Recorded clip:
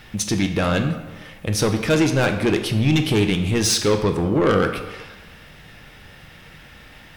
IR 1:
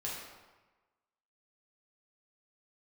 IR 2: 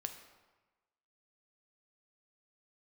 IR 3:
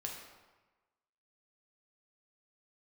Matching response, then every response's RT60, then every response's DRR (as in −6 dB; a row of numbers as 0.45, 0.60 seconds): 2; 1.2, 1.2, 1.2 seconds; −6.0, 6.0, −1.0 decibels